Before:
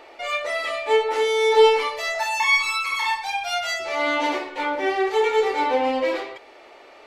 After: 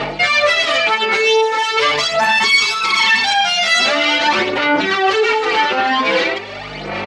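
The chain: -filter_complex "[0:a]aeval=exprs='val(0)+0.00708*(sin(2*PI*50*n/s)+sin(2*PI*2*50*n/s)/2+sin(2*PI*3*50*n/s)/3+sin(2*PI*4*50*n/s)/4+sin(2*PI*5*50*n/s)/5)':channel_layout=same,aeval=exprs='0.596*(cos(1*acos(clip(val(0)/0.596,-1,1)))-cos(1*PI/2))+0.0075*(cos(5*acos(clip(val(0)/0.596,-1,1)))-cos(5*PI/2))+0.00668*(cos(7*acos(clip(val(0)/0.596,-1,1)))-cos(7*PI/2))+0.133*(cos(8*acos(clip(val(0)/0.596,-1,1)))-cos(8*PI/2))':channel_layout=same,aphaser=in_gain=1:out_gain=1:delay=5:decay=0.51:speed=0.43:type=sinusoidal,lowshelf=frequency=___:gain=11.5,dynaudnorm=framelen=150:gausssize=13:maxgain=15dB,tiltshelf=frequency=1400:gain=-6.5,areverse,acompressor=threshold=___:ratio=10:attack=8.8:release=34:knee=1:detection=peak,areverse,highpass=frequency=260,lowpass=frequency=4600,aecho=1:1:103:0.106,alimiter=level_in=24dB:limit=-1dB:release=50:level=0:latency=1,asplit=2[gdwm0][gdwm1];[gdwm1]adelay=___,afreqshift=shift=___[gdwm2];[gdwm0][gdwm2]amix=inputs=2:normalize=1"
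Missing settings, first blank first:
390, -29dB, 4.4, 1.5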